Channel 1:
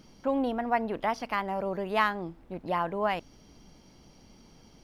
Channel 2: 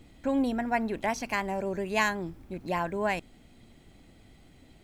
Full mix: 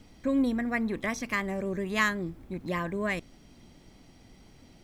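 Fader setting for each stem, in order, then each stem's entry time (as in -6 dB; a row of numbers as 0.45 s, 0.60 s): -4.0 dB, -1.0 dB; 0.00 s, 0.00 s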